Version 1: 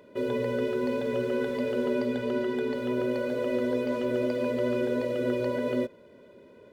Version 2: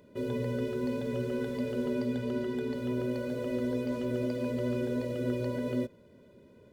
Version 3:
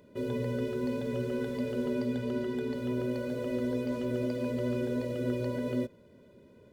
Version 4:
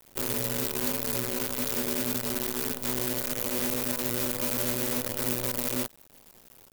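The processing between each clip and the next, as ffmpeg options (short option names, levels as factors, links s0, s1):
-af "bass=f=250:g=12,treble=f=4000:g=7,volume=0.422"
-af anull
-af "acrusher=bits=6:dc=4:mix=0:aa=0.000001,aemphasis=mode=production:type=75fm,volume=0.794"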